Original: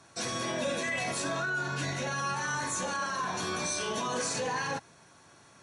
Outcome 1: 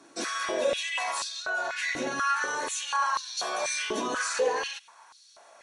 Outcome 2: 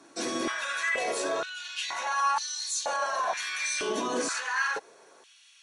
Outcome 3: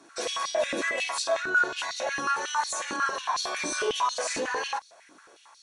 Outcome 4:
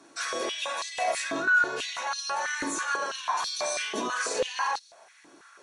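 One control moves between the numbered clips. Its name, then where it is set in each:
step-sequenced high-pass, rate: 4.1 Hz, 2.1 Hz, 11 Hz, 6.1 Hz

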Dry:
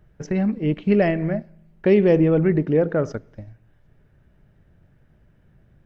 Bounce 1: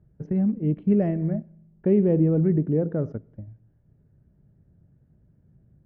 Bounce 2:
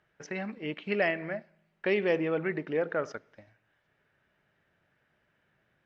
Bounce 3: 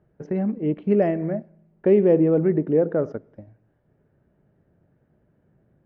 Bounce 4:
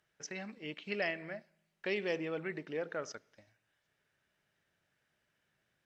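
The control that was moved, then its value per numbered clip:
band-pass filter, frequency: 140 Hz, 2.3 kHz, 410 Hz, 6 kHz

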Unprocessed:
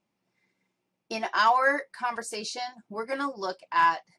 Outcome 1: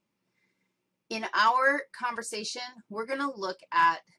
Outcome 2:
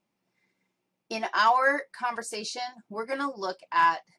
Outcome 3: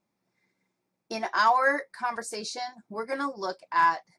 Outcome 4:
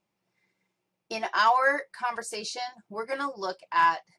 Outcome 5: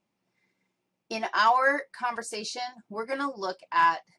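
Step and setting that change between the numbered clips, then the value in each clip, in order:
peaking EQ, frequency: 730 Hz, 92 Hz, 2.9 kHz, 250 Hz, 14 kHz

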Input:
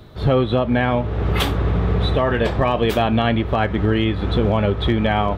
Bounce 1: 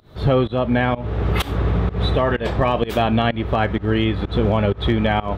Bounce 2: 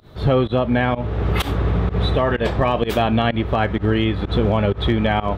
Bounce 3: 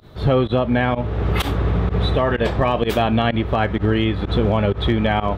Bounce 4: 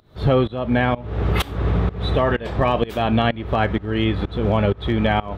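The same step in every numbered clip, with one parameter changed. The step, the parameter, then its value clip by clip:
volume shaper, release: 179 ms, 106 ms, 72 ms, 354 ms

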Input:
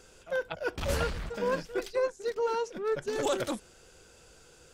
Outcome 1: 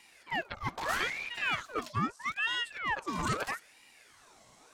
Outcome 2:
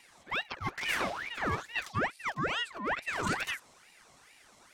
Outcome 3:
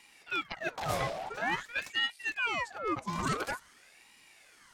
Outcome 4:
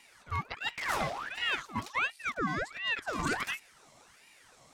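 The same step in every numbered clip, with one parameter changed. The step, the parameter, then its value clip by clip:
ring modulator with a swept carrier, at: 0.78 Hz, 2.3 Hz, 0.48 Hz, 1.4 Hz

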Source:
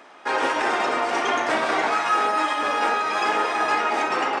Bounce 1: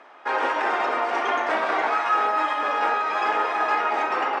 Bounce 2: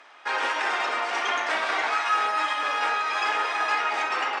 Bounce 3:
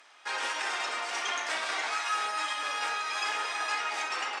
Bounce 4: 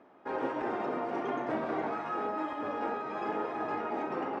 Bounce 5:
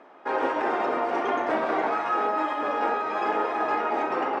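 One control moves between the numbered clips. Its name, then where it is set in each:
band-pass filter, frequency: 990 Hz, 2.7 kHz, 7 kHz, 110 Hz, 380 Hz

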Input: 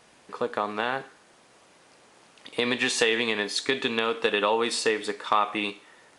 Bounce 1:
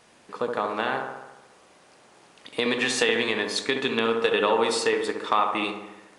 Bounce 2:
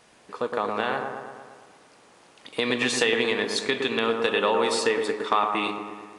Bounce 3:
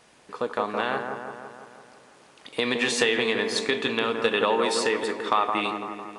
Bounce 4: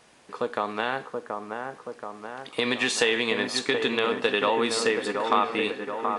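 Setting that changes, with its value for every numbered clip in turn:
feedback echo behind a low-pass, time: 70 ms, 114 ms, 168 ms, 728 ms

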